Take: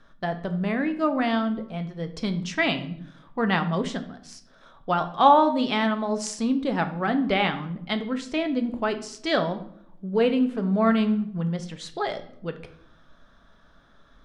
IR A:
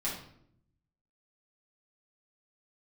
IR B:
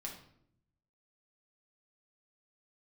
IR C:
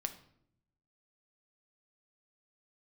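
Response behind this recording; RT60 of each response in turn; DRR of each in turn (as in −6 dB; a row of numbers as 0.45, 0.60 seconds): C; 0.70, 0.70, 0.70 seconds; −7.5, −1.5, 7.0 decibels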